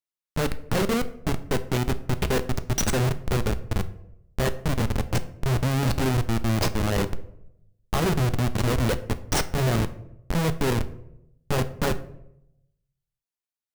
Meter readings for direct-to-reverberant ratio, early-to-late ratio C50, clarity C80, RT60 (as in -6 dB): 11.0 dB, 15.5 dB, 18.5 dB, 0.80 s